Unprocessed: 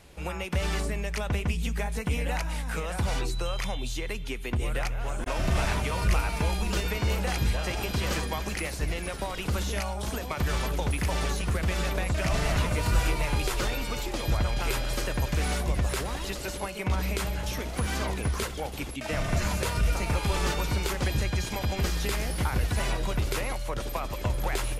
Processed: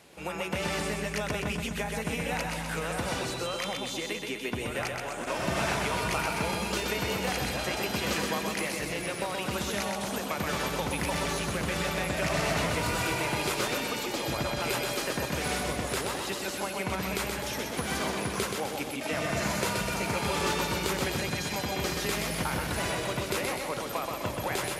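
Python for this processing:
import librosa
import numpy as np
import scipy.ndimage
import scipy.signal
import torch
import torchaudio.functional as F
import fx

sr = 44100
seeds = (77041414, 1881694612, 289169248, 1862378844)

p1 = scipy.signal.sosfilt(scipy.signal.butter(2, 170.0, 'highpass', fs=sr, output='sos'), x)
y = p1 + fx.echo_feedback(p1, sr, ms=127, feedback_pct=56, wet_db=-4.0, dry=0)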